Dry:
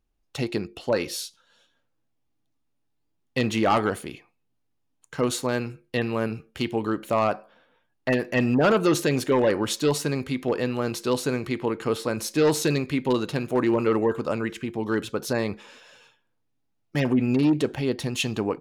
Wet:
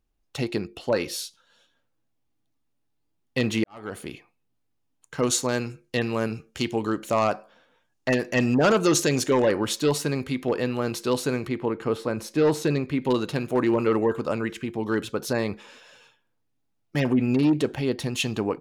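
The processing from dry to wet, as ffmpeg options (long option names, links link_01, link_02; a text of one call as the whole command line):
ffmpeg -i in.wav -filter_complex "[0:a]asettb=1/sr,asplit=3[link_01][link_02][link_03];[link_01]atrim=end=5.224[link_04];[link_02]atrim=start=5.22:end=9.46,asetpts=PTS-STARTPTS,afade=type=in:duration=0.004:curve=qsin,afade=type=out:start_time=4.236:duration=0.004:curve=qsin,equalizer=frequency=6500:width=1.4:gain=9.5[link_05];[link_03]atrim=start=9.456[link_06];[link_04][link_05]acrossfade=duration=0.004:curve1=hsin:curve2=qsin[link_07];[link_07][link_06]acrossfade=duration=0.004:curve1=qsin:curve2=hsin,asettb=1/sr,asplit=3[link_08][link_09][link_10];[link_08]atrim=end=11.484[link_11];[link_09]atrim=start=11.48:end=13.02,asetpts=PTS-STARTPTS,afade=type=in:duration=0.004:curve=qsin,afade=type=out:start_time=1.536:duration=0.004:curve=qsin,highshelf=frequency=2700:gain=-9[link_12];[link_10]atrim=start=13.016[link_13];[link_11][link_12]acrossfade=duration=0.004:curve1=hsin:curve2=qsin[link_14];[link_14][link_13]acrossfade=duration=0.004:curve1=qsin:curve2=hsin,asplit=2[link_15][link_16];[link_15]atrim=end=3.64,asetpts=PTS-STARTPTS,afade=type=out:start_time=3.636:duration=0.004:curve=hsin[link_17];[link_16]atrim=start=3.64,asetpts=PTS-STARTPTS,afade=type=in:duration=0.42:curve=qua[link_18];[link_17][link_18]concat=n=2:v=0:a=1" out.wav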